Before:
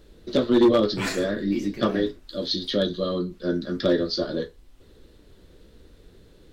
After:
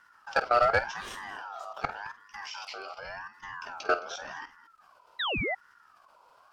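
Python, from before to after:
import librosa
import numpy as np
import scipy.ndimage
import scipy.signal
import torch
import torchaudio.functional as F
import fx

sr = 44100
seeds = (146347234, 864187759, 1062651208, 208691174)

p1 = fx.peak_eq(x, sr, hz=110.0, db=-13.5, octaves=1.7, at=(2.99, 3.57))
p2 = fx.level_steps(p1, sr, step_db=19)
p3 = p2 + fx.echo_multitap(p2, sr, ms=(49, 216), db=(-13.0, -18.0), dry=0)
p4 = fx.spec_paint(p3, sr, seeds[0], shape='fall', start_s=5.19, length_s=0.36, low_hz=570.0, high_hz=3000.0, level_db=-27.0)
y = fx.ring_lfo(p4, sr, carrier_hz=1200.0, swing_pct=20, hz=0.88)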